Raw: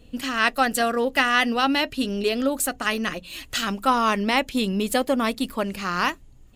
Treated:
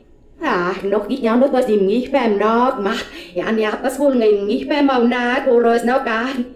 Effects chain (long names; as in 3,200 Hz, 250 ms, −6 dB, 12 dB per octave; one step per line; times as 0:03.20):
played backwards from end to start
parametric band 390 Hz +14 dB 0.93 octaves
notch filter 1,200 Hz, Q 9.6
hum removal 102.3 Hz, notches 18
brickwall limiter −11.5 dBFS, peak gain reduction 8.5 dB
mid-hump overdrive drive 7 dB, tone 1,000 Hz, clips at −11.5 dBFS
reverb whose tail is shaped and stops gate 140 ms falling, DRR 6.5 dB
level +6.5 dB